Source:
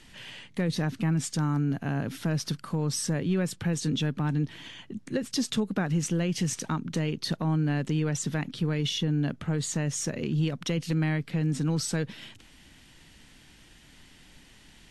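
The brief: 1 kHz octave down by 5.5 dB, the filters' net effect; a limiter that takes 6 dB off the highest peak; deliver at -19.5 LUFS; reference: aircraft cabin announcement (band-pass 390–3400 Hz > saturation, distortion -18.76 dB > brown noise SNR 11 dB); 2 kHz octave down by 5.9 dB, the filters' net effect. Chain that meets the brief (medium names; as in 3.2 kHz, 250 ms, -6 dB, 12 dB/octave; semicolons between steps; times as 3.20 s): peaking EQ 1 kHz -6 dB; peaking EQ 2 kHz -5 dB; peak limiter -24 dBFS; band-pass 390–3400 Hz; saturation -31.5 dBFS; brown noise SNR 11 dB; trim +23 dB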